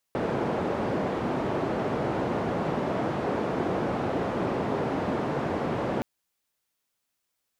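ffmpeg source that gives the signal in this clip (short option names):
-f lavfi -i "anoisesrc=c=white:d=5.87:r=44100:seed=1,highpass=f=120,lowpass=f=590,volume=-7dB"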